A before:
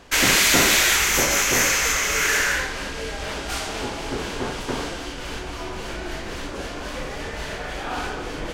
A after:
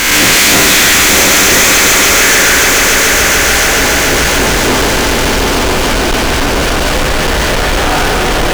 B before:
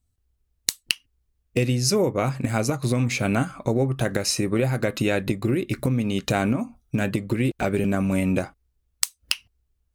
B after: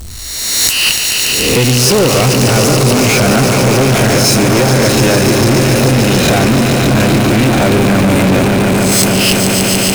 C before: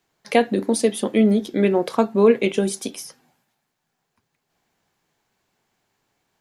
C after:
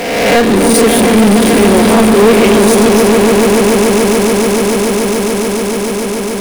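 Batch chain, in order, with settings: reverse spectral sustain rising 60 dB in 0.57 s; echo with a slow build-up 144 ms, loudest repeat 5, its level -10 dB; power-law waveshaper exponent 0.35

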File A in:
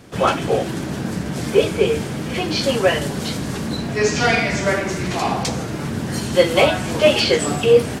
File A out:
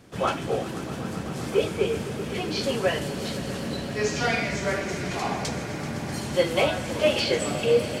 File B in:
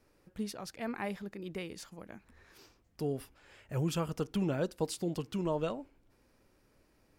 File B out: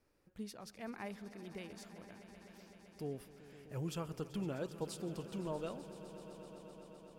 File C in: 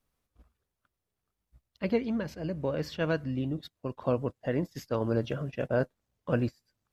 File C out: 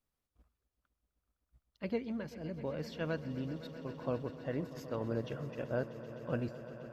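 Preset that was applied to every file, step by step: echo with a slow build-up 128 ms, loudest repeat 5, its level -17 dB; trim -8 dB

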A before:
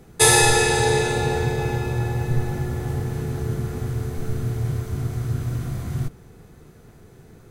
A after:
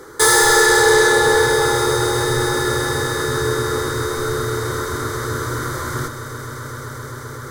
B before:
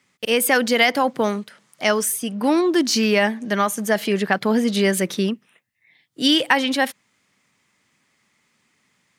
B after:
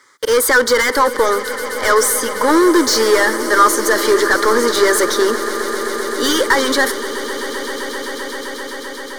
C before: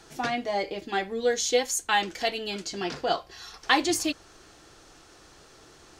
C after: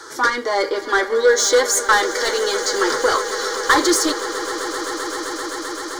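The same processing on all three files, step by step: overdrive pedal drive 27 dB, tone 3.2 kHz, clips at -1 dBFS; bass shelf 460 Hz -4.5 dB; static phaser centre 710 Hz, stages 6; echo with a slow build-up 130 ms, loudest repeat 8, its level -17.5 dB; trim +1.5 dB

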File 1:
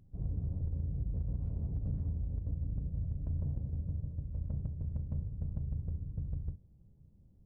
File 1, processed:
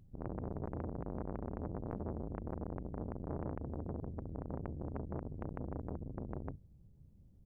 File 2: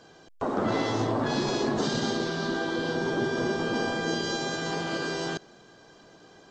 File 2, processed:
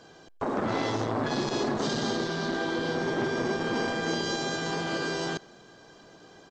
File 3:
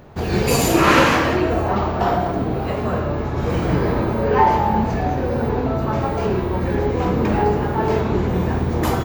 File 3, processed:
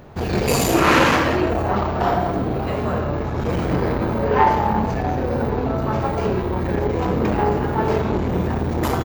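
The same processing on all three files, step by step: speakerphone echo 90 ms, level -26 dB; transformer saturation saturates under 720 Hz; trim +1 dB

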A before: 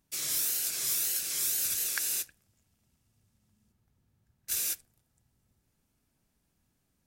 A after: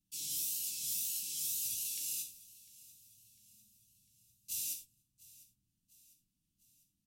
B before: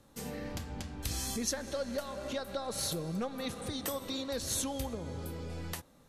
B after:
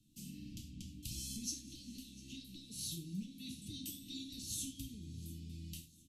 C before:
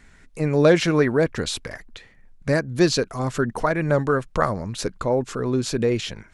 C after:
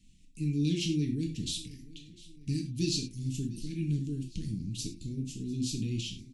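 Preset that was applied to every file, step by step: Chebyshev band-stop 310–2700 Hz, order 4; on a send: feedback delay 700 ms, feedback 52%, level -21 dB; on the sum: gated-style reverb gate 130 ms falling, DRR 1 dB; trim -9 dB

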